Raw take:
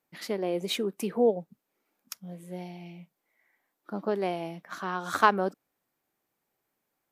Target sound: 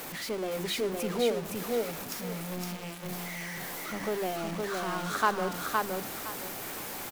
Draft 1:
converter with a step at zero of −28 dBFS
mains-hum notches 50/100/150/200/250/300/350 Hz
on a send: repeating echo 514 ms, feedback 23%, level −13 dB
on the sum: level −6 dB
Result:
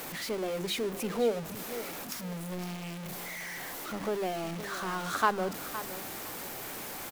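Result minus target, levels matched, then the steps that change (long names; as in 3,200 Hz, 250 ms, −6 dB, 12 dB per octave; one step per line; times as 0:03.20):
echo-to-direct −10 dB
change: repeating echo 514 ms, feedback 23%, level −3 dB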